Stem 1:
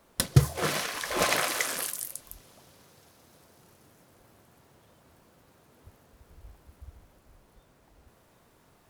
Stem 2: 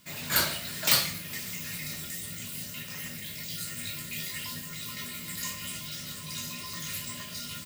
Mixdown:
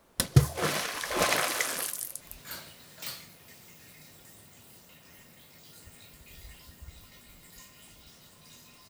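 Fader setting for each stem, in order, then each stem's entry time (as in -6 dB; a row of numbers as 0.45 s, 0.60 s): -0.5 dB, -16.5 dB; 0.00 s, 2.15 s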